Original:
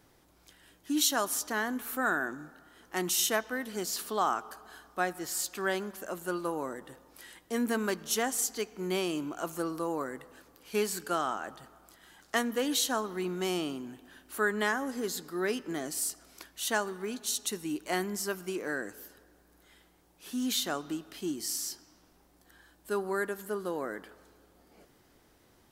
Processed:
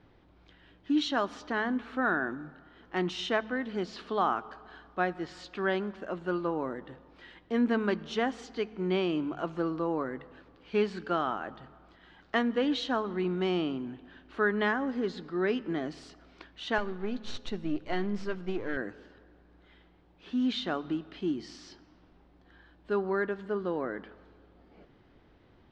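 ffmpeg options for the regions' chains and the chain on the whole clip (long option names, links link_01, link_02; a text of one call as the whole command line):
ffmpeg -i in.wav -filter_complex "[0:a]asettb=1/sr,asplit=3[link_01][link_02][link_03];[link_01]atrim=end=16.784[link_04];[link_02]atrim=start=16.78:end=18.77,asetpts=PTS-STARTPTS,afade=type=in:duration=0.004:curve=qsin,afade=type=out:start_time=1.986:duration=0.004:curve=qsin,aeval=exprs='if(lt(val(0),0),0.447*val(0),val(0))':channel_layout=same,bass=frequency=250:gain=4,treble=frequency=4000:gain=3,aeval=exprs='val(0)+0.000708*sin(2*PI*520*n/s)':channel_layout=same[link_05];[link_03]atrim=start=18.766[link_06];[link_04][link_05]acrossfade=duration=0.004:curve1=hsin:curve2=qsin[link_07];[link_07][link_06]acrossfade=duration=0.004:curve1=qsin:curve2=hsin,lowpass=frequency=3700:width=0.5412,lowpass=frequency=3700:width=1.3066,lowshelf=frequency=310:gain=7,bandreject=frequency=72.09:width_type=h:width=4,bandreject=frequency=144.18:width_type=h:width=4,bandreject=frequency=216.27:width_type=h:width=4" out.wav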